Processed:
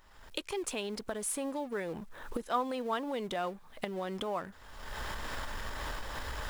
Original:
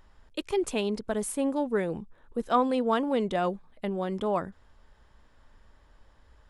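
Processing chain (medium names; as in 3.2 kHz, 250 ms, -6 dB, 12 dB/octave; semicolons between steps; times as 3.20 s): companding laws mixed up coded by mu; recorder AGC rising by 40 dB/s; bass shelf 490 Hz -10 dB; trim -5 dB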